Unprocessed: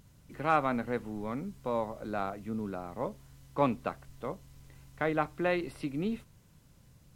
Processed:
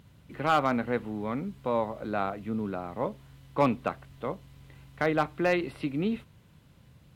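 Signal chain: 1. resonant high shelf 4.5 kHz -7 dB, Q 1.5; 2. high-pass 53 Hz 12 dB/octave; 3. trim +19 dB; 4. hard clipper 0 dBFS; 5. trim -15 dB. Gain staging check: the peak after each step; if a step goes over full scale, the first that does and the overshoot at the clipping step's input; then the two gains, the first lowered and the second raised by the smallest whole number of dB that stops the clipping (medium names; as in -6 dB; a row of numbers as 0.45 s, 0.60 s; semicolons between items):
-12.0 dBFS, -12.5 dBFS, +6.5 dBFS, 0.0 dBFS, -15.0 dBFS; step 3, 6.5 dB; step 3 +12 dB, step 5 -8 dB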